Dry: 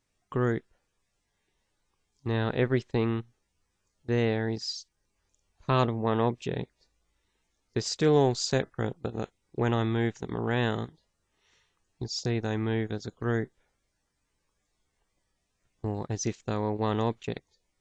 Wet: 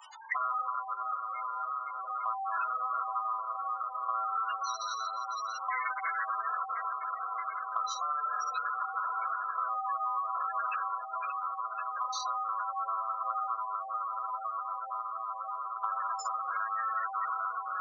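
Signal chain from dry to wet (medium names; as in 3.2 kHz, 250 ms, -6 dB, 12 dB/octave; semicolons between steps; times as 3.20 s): ring modulator 890 Hz; in parallel at -1 dB: compression 8:1, threshold -41 dBFS, peak gain reduction 20.5 dB; on the sum: reverberation RT60 2.1 s, pre-delay 4 ms, DRR -5 dB; overload inside the chain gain 22.5 dB; echo that smears into a reverb 613 ms, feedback 66%, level -12 dB; spectral gate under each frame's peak -10 dB strong; high-pass 1.1 kHz 24 dB/octave; treble shelf 3.3 kHz +11.5 dB; three bands compressed up and down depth 100%; trim -1.5 dB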